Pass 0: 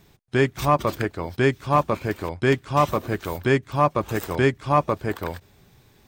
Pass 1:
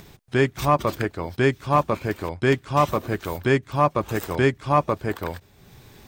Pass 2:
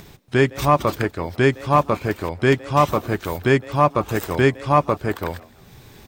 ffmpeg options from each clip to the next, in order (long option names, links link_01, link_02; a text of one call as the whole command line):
ffmpeg -i in.wav -af "acompressor=mode=upward:threshold=-38dB:ratio=2.5" out.wav
ffmpeg -i in.wav -filter_complex "[0:a]asplit=3[link_01][link_02][link_03];[link_02]adelay=161,afreqshift=150,volume=-22dB[link_04];[link_03]adelay=322,afreqshift=300,volume=-31.1dB[link_05];[link_01][link_04][link_05]amix=inputs=3:normalize=0,volume=3dB" out.wav